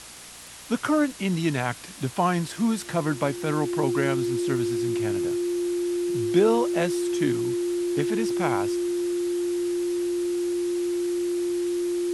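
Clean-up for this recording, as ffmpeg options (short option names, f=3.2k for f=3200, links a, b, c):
-af "adeclick=t=4,bandreject=f=59.4:t=h:w=4,bandreject=f=118.8:t=h:w=4,bandreject=f=178.2:t=h:w=4,bandreject=f=237.6:t=h:w=4,bandreject=f=297:t=h:w=4,bandreject=f=350:w=30,afftdn=nr=30:nf=-39"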